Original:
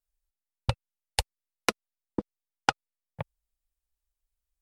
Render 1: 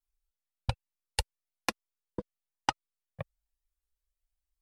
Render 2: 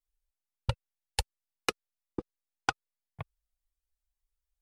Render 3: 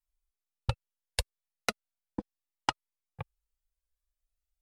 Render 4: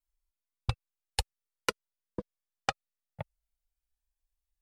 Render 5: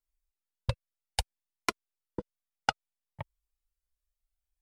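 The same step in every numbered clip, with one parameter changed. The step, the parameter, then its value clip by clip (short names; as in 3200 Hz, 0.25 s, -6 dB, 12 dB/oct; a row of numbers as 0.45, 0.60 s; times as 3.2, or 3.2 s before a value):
cascading flanger, rate: 1.1, 1.9, 0.37, 0.2, 0.62 Hz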